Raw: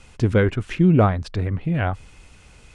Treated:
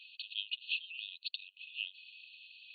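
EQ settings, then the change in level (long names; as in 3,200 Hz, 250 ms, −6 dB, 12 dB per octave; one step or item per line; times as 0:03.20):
linear-phase brick-wall high-pass 2,500 Hz
linear-phase brick-wall low-pass 4,500 Hz
+4.0 dB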